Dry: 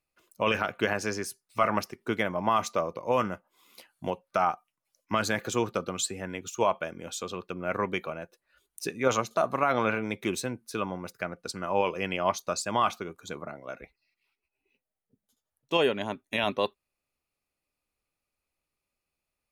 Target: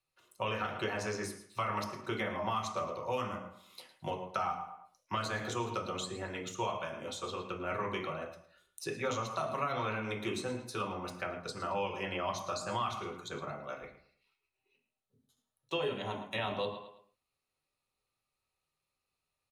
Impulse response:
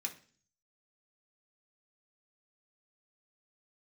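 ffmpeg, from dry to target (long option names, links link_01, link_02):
-filter_complex "[0:a]asplit=2[link_01][link_02];[link_02]adelay=109,lowpass=frequency=4400:poles=1,volume=-14dB,asplit=2[link_03][link_04];[link_04]adelay=109,lowpass=frequency=4400:poles=1,volume=0.33,asplit=2[link_05][link_06];[link_06]adelay=109,lowpass=frequency=4400:poles=1,volume=0.33[link_07];[link_01][link_03][link_05][link_07]amix=inputs=4:normalize=0[link_08];[1:a]atrim=start_sample=2205,atrim=end_sample=3969,asetrate=22932,aresample=44100[link_09];[link_08][link_09]afir=irnorm=-1:irlink=0,acrossover=split=220|2100[link_10][link_11][link_12];[link_10]acompressor=threshold=-38dB:ratio=4[link_13];[link_11]acompressor=threshold=-30dB:ratio=4[link_14];[link_12]acompressor=threshold=-39dB:ratio=4[link_15];[link_13][link_14][link_15]amix=inputs=3:normalize=0,volume=-4.5dB"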